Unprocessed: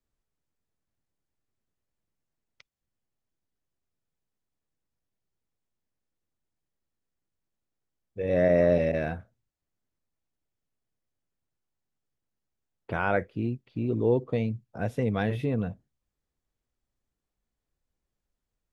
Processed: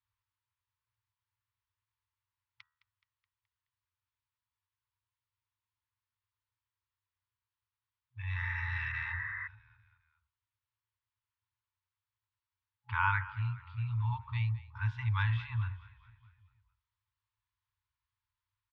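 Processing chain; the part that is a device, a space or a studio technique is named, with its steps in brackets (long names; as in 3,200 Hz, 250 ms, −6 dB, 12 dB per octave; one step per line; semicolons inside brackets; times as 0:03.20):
frequency-shifting delay pedal into a guitar cabinet (echo with shifted repeats 212 ms, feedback 54%, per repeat −31 Hz, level −17.5 dB; loudspeaker in its box 95–4,200 Hz, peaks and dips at 99 Hz +6 dB, 700 Hz −7 dB, 1,000 Hz +6 dB)
brick-wall band-stop 120–840 Hz
hum removal 76.67 Hz, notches 25
healed spectral selection 0:08.45–0:09.44, 960–2,200 Hz before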